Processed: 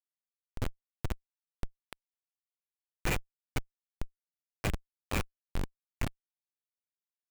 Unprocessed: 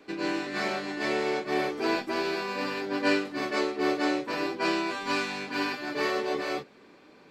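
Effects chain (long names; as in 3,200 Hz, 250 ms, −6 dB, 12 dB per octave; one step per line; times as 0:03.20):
four-pole ladder high-pass 2,000 Hz, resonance 55%
comparator with hysteresis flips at −30 dBFS
level +13.5 dB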